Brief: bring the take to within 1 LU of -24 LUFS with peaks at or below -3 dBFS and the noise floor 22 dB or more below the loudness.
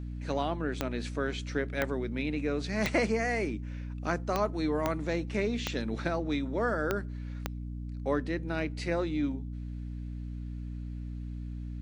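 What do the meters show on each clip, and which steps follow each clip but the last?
clicks 8; hum 60 Hz; harmonics up to 300 Hz; hum level -35 dBFS; loudness -33.0 LUFS; peak -13.0 dBFS; loudness target -24.0 LUFS
-> de-click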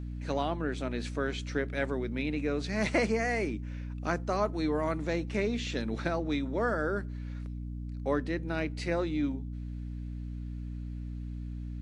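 clicks 0; hum 60 Hz; harmonics up to 300 Hz; hum level -35 dBFS
-> notches 60/120/180/240/300 Hz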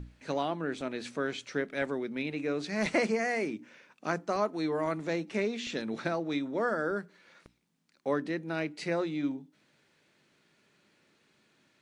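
hum none; loudness -33.0 LUFS; peak -14.5 dBFS; loudness target -24.0 LUFS
-> gain +9 dB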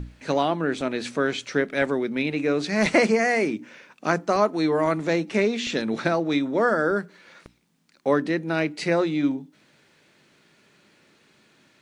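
loudness -24.0 LUFS; peak -5.5 dBFS; noise floor -61 dBFS

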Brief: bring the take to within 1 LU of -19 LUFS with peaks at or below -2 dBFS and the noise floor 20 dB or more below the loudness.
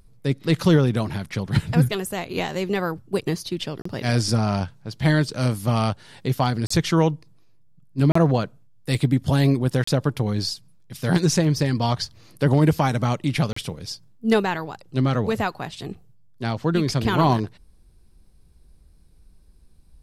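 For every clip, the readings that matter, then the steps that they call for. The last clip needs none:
dropouts 5; longest dropout 34 ms; loudness -22.5 LUFS; peak -6.5 dBFS; loudness target -19.0 LUFS
-> interpolate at 3.82/6.67/8.12/9.84/13.53, 34 ms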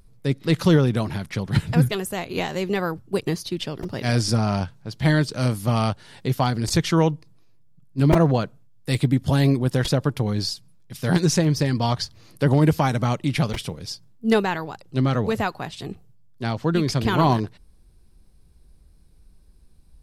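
dropouts 0; loudness -22.5 LUFS; peak -6.0 dBFS; loudness target -19.0 LUFS
-> gain +3.5 dB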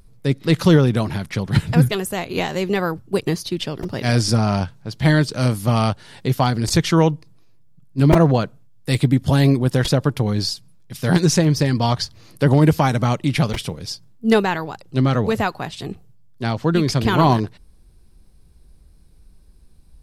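loudness -19.0 LUFS; peak -2.5 dBFS; noise floor -49 dBFS

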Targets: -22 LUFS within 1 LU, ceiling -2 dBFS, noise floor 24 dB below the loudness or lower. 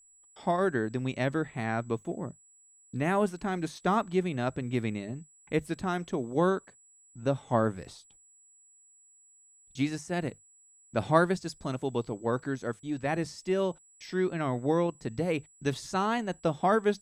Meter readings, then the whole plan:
steady tone 7800 Hz; tone level -58 dBFS; loudness -31.0 LUFS; peak -9.5 dBFS; loudness target -22.0 LUFS
-> notch 7800 Hz, Q 30; gain +9 dB; limiter -2 dBFS

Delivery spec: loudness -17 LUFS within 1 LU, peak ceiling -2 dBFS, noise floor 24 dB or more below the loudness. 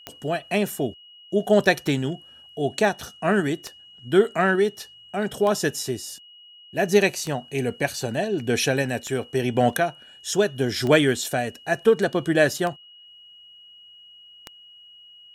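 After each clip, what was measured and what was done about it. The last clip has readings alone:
clicks 9; steady tone 2900 Hz; tone level -46 dBFS; loudness -23.5 LUFS; peak -3.5 dBFS; loudness target -17.0 LUFS
-> de-click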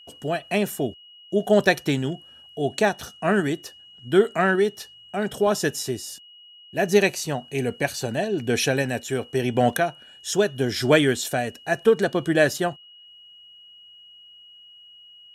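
clicks 0; steady tone 2900 Hz; tone level -46 dBFS
-> notch 2900 Hz, Q 30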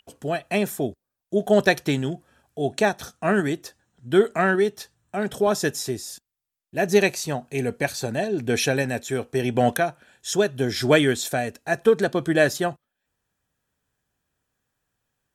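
steady tone none; loudness -23.5 LUFS; peak -3.5 dBFS; loudness target -17.0 LUFS
-> gain +6.5 dB; limiter -2 dBFS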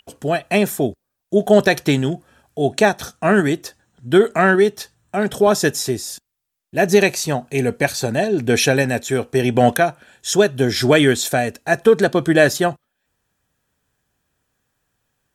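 loudness -17.5 LUFS; peak -2.0 dBFS; noise floor -77 dBFS

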